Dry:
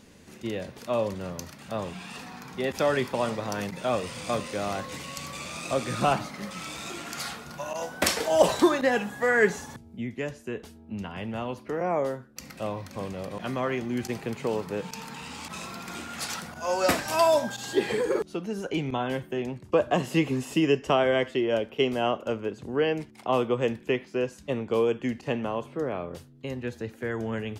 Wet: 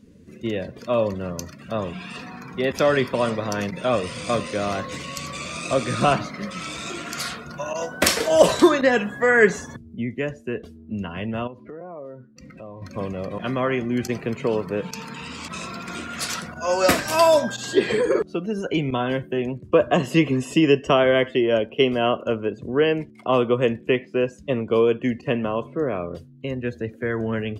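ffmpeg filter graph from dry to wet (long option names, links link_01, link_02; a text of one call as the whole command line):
ffmpeg -i in.wav -filter_complex "[0:a]asettb=1/sr,asplit=3[link_01][link_02][link_03];[link_01]atrim=end=11.474[link_04];[link_02]atrim=start=11.47:end=12.82,asetpts=PTS-STARTPTS,afade=type=in:duration=0.004:curve=qsin,afade=type=out:start_time=1.346:duration=0.004:curve=qsin,lowpass=frequency=2600:poles=1,acompressor=threshold=-44dB:ratio=3:attack=3.2:release=140:knee=1:detection=peak[link_05];[link_03]atrim=start=12.816[link_06];[link_04][link_05]acrossfade=duration=0.004:curve1=hsin:curve2=qsin[link_07];[link_07][link_06]acrossfade=duration=0.004:curve1=qsin:curve2=hsin,bandreject=frequency=830:width=5.1,afftdn=noise_reduction=16:noise_floor=-48,volume=6dB" out.wav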